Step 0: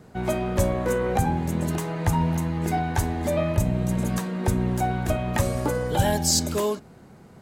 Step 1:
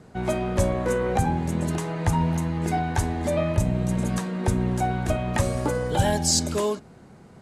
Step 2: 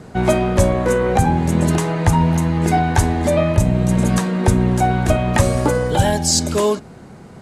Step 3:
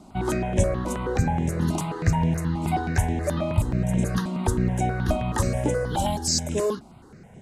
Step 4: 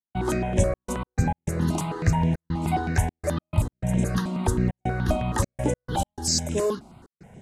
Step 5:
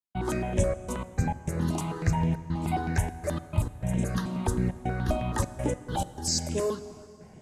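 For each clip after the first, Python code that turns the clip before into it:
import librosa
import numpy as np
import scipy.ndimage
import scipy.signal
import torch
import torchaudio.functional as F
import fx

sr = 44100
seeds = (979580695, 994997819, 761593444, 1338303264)

y1 = scipy.signal.sosfilt(scipy.signal.butter(4, 11000.0, 'lowpass', fs=sr, output='sos'), x)
y2 = fx.rider(y1, sr, range_db=10, speed_s=0.5)
y2 = y2 * librosa.db_to_amplitude(8.0)
y3 = fx.phaser_held(y2, sr, hz=9.4, low_hz=460.0, high_hz=4500.0)
y3 = y3 * librosa.db_to_amplitude(-5.5)
y4 = fx.step_gate(y3, sr, bpm=102, pattern='.xxxx.x.x.xxxxxx', floor_db=-60.0, edge_ms=4.5)
y5 = fx.rev_plate(y4, sr, seeds[0], rt60_s=3.1, hf_ratio=0.7, predelay_ms=0, drr_db=14.0)
y5 = y5 * librosa.db_to_amplitude(-4.0)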